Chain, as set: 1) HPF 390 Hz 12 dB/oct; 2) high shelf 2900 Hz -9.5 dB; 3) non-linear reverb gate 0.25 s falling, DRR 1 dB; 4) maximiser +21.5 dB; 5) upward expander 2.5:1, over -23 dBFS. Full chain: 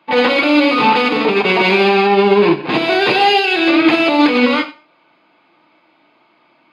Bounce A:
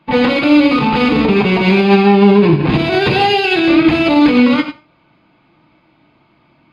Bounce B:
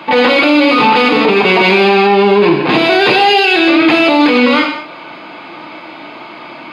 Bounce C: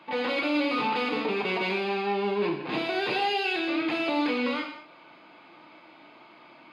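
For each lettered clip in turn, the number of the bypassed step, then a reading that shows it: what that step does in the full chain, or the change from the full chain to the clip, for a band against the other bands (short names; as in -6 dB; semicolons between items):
1, 125 Hz band +13.0 dB; 5, loudness change +3.5 LU; 4, loudness change -15.0 LU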